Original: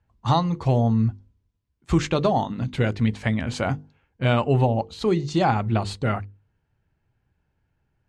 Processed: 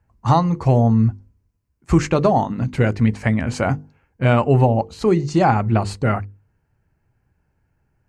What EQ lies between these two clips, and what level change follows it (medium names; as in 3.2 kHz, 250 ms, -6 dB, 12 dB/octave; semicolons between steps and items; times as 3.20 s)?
peaking EQ 3.5 kHz -12.5 dB 0.49 oct; +5.0 dB